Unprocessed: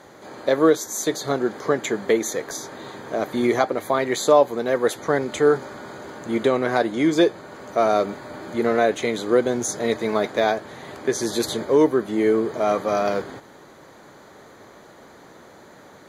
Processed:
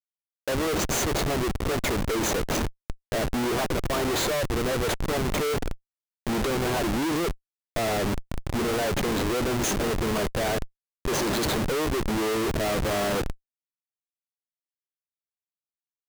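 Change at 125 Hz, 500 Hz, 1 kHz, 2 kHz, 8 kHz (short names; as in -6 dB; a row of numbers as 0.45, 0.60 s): +5.0, -7.5, -5.0, -2.0, -0.5 dB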